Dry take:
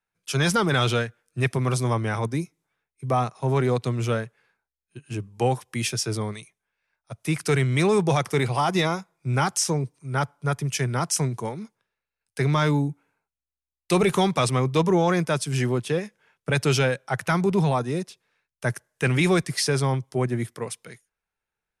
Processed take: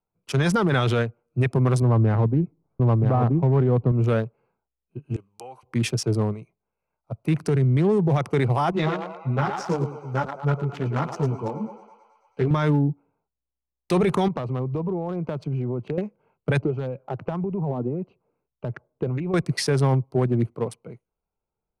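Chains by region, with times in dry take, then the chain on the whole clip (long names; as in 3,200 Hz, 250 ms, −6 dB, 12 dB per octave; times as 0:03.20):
0:01.82–0:03.92: low-pass filter 2,100 Hz + spectral tilt −2 dB per octave + single-tap delay 975 ms −4.5 dB
0:05.16–0:05.63: high-pass filter 860 Hz 6 dB per octave + tilt shelving filter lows −9.5 dB, about 1,100 Hz + downward compressor 8 to 1, threshold −37 dBFS
0:07.34–0:08.18: high-pass filter 130 Hz 6 dB per octave + low-shelf EQ 370 Hz +9.5 dB + downward compressor 2 to 1, threshold −28 dBFS
0:08.71–0:12.51: low-pass filter 4,300 Hz + feedback echo with a high-pass in the loop 109 ms, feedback 78%, high-pass 580 Hz, level −5 dB + string-ensemble chorus
0:14.28–0:15.98: low-pass filter 4,100 Hz + downward compressor 12 to 1, threshold −28 dBFS
0:16.61–0:19.34: downward compressor 10 to 1, threshold −28 dBFS + head-to-tape spacing loss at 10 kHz 29 dB + auto-filter bell 1.7 Hz 270–3,200 Hz +9 dB
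whole clip: adaptive Wiener filter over 25 samples; high-shelf EQ 3,100 Hz −10.5 dB; brickwall limiter −19 dBFS; level +6 dB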